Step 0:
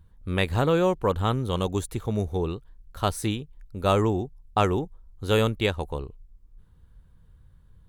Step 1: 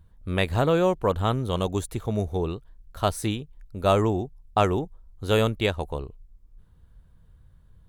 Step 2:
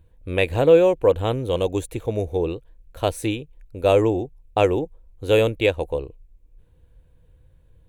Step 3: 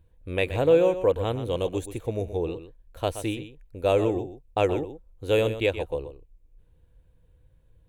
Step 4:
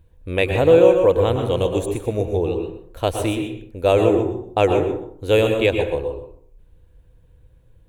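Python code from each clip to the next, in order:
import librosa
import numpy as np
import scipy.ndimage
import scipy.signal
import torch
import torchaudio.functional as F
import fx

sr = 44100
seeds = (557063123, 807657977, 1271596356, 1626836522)

y1 = fx.peak_eq(x, sr, hz=650.0, db=6.0, octaves=0.22)
y2 = fx.graphic_eq_31(y1, sr, hz=(200, 315, 500, 1250, 2500, 5000), db=(-7, 6, 11, -8, 8, -6))
y3 = y2 + 10.0 ** (-11.5 / 20.0) * np.pad(y2, (int(125 * sr / 1000.0), 0))[:len(y2)]
y3 = y3 * 10.0 ** (-5.0 / 20.0)
y4 = fx.rev_plate(y3, sr, seeds[0], rt60_s=0.57, hf_ratio=0.5, predelay_ms=100, drr_db=5.5)
y4 = y4 * 10.0 ** (6.0 / 20.0)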